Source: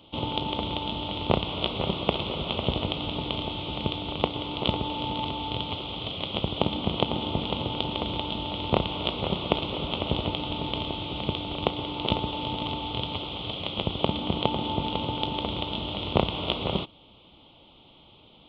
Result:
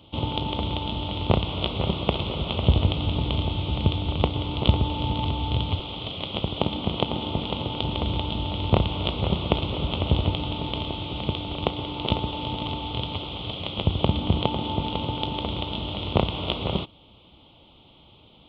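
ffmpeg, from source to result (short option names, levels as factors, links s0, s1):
-af "asetnsamples=n=441:p=0,asendcmd='2.63 equalizer g 15;5.79 equalizer g 3;7.82 equalizer g 11.5;10.5 equalizer g 5.5;13.85 equalizer g 12.5;14.45 equalizer g 5.5',equalizer=f=73:t=o:w=2:g=9"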